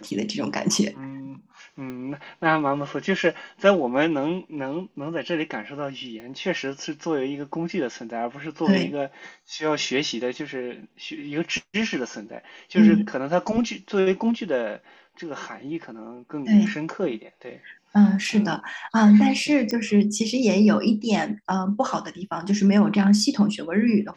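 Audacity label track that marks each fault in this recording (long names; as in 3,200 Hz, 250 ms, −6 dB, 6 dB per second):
1.900000	1.900000	click −22 dBFS
6.200000	6.200000	click −27 dBFS
19.710000	19.710000	click −15 dBFS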